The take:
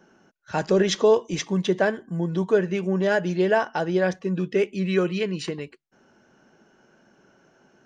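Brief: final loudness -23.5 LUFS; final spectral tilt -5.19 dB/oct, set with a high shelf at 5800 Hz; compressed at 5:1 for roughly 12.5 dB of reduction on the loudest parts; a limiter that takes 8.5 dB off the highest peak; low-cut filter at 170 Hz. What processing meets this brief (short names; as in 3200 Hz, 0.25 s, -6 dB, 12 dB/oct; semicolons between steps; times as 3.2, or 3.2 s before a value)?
HPF 170 Hz; high shelf 5800 Hz +6.5 dB; compressor 5:1, threshold -28 dBFS; gain +11.5 dB; limiter -13.5 dBFS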